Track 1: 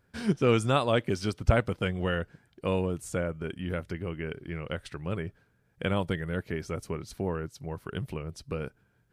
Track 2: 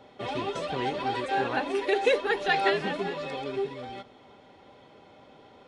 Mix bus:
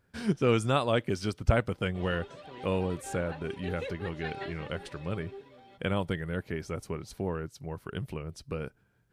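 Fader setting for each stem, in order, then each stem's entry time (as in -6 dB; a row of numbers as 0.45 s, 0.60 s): -1.5 dB, -15.5 dB; 0.00 s, 1.75 s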